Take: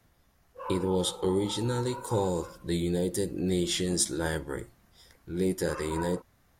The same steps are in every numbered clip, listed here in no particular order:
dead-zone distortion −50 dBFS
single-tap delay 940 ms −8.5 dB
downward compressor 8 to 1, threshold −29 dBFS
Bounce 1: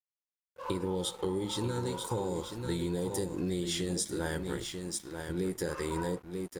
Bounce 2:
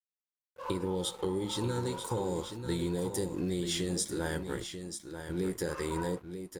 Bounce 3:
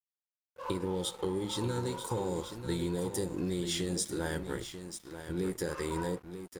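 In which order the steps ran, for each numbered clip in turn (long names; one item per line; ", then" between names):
single-tap delay, then dead-zone distortion, then downward compressor
dead-zone distortion, then downward compressor, then single-tap delay
downward compressor, then single-tap delay, then dead-zone distortion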